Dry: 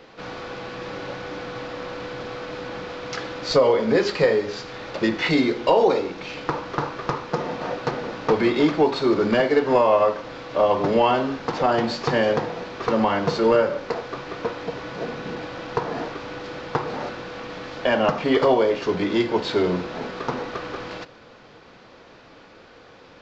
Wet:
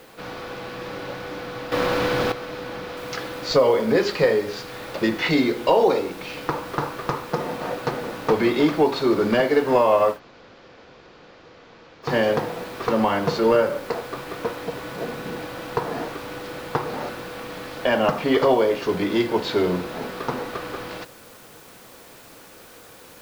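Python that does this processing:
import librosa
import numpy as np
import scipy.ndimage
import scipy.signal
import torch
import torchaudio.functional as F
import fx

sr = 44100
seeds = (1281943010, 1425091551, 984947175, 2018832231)

y = fx.noise_floor_step(x, sr, seeds[0], at_s=2.97, before_db=-57, after_db=-50, tilt_db=0.0)
y = fx.edit(y, sr, fx.clip_gain(start_s=1.72, length_s=0.6, db=11.0),
    fx.room_tone_fill(start_s=10.15, length_s=1.92, crossfade_s=0.1), tone=tone)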